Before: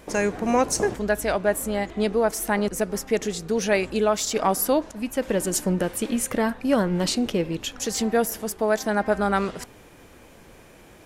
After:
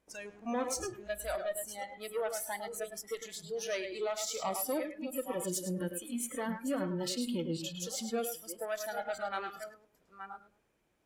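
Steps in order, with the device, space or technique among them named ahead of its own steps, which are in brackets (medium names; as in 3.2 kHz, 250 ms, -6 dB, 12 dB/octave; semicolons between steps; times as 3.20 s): chunks repeated in reverse 612 ms, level -10 dB; rockabilly slapback (valve stage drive 19 dB, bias 0.35; tape echo 105 ms, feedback 32%, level -4 dB, low-pass 5.6 kHz); spectral noise reduction 19 dB; trim -8.5 dB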